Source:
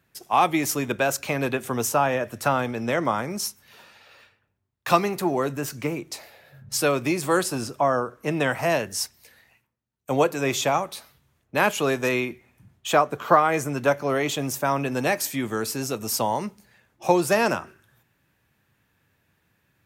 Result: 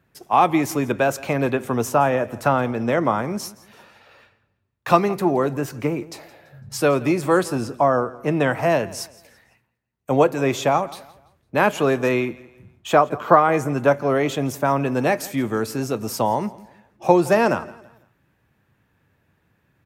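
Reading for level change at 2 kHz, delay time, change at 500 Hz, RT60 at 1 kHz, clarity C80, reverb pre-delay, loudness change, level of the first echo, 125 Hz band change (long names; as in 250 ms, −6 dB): +0.5 dB, 168 ms, +4.5 dB, no reverb audible, no reverb audible, no reverb audible, +3.5 dB, −20.5 dB, +5.0 dB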